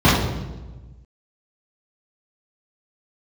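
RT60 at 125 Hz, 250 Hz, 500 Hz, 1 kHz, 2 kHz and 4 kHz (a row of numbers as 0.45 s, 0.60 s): 1.8 s, 1.5 s, 1.3 s, 1.1 s, 0.90 s, 0.85 s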